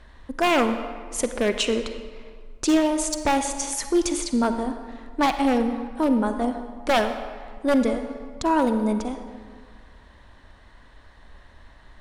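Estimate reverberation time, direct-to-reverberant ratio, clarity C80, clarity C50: 1.8 s, 8.0 dB, 9.5 dB, 8.5 dB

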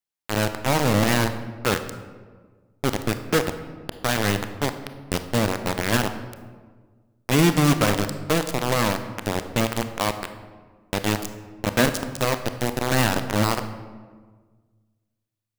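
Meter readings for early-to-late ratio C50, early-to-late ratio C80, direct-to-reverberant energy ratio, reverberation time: 10.0 dB, 12.0 dB, 8.5 dB, 1.5 s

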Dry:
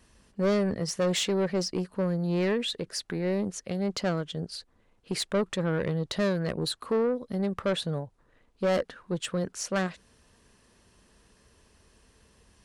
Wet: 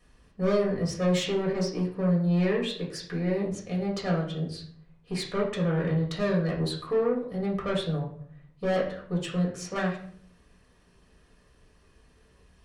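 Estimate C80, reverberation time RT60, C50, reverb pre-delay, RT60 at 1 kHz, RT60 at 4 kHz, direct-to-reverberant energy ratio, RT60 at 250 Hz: 11.0 dB, 0.55 s, 6.5 dB, 4 ms, 0.55 s, 0.40 s, −6.0 dB, 0.80 s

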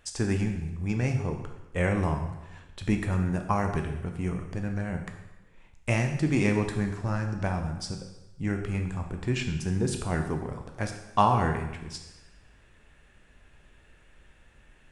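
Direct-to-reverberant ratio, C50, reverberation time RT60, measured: 4.0 dB, 7.0 dB, 1.0 s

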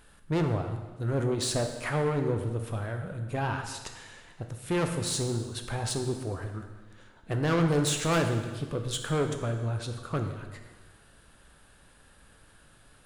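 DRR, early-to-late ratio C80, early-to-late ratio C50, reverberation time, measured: 5.0 dB, 8.5 dB, 7.0 dB, 1.4 s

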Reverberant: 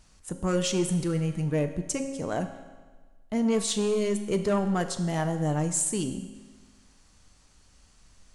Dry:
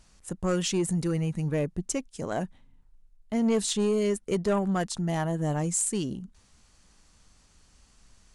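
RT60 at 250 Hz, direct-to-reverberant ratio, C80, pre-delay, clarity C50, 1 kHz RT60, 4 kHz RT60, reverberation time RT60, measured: 1.4 s, 7.0 dB, 11.0 dB, 4 ms, 9.5 dB, 1.4 s, 1.3 s, 1.4 s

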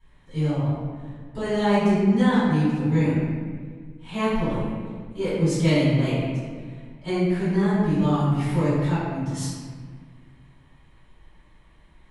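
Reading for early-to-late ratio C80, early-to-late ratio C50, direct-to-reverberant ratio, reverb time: 0.0 dB, −2.5 dB, −15.5 dB, 1.7 s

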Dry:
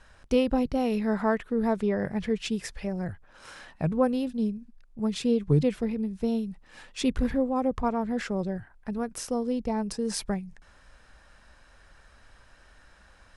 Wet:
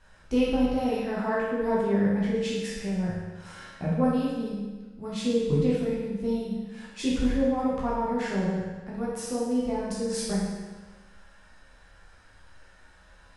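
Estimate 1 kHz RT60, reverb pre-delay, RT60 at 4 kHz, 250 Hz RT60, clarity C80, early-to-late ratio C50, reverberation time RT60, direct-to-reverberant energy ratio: 1.3 s, 11 ms, 1.2 s, 1.3 s, 2.5 dB, −1.0 dB, 1.3 s, −7.0 dB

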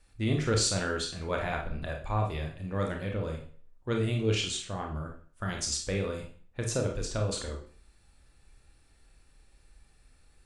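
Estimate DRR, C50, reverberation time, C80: 1.0 dB, 6.0 dB, 0.45 s, 11.5 dB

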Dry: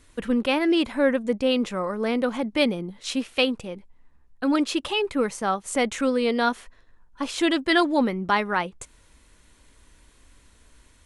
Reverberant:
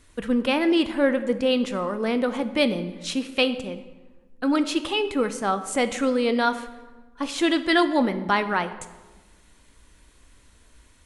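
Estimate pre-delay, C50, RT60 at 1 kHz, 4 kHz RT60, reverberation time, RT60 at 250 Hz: 8 ms, 12.5 dB, 1.2 s, 0.85 s, 1.3 s, 1.6 s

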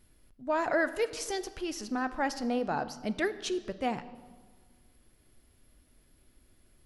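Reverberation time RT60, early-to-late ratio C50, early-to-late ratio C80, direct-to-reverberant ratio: 1.6 s, 14.5 dB, 16.0 dB, 12.0 dB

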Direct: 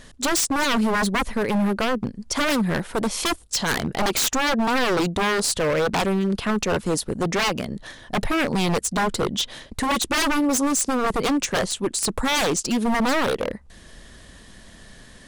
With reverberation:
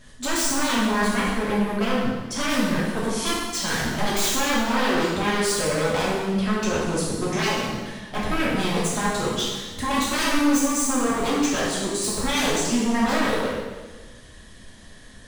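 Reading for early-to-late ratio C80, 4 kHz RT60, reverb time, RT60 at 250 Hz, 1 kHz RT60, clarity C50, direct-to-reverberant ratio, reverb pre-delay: 2.0 dB, 1.3 s, 1.3 s, 1.4 s, 1.3 s, −0.5 dB, −7.5 dB, 3 ms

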